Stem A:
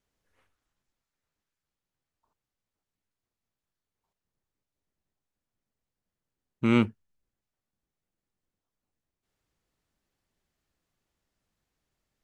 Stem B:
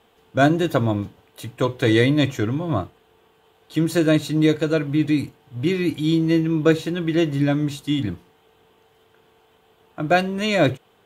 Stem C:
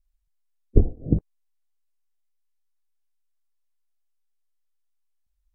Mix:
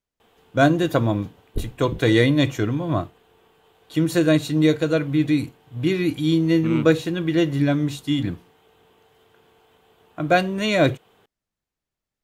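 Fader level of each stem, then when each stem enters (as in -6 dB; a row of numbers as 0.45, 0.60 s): -5.5, 0.0, -10.5 dB; 0.00, 0.20, 0.80 s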